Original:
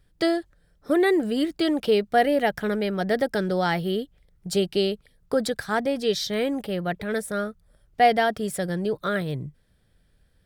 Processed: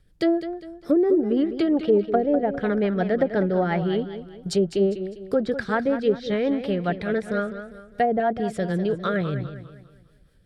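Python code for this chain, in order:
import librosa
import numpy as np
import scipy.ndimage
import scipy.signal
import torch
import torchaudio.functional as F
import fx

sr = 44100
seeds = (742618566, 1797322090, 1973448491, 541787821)

y = fx.rotary(x, sr, hz=5.5)
y = fx.env_lowpass_down(y, sr, base_hz=500.0, full_db=-18.5)
y = fx.echo_warbled(y, sr, ms=201, feedback_pct=39, rate_hz=2.8, cents=88, wet_db=-11)
y = y * 10.0 ** (4.0 / 20.0)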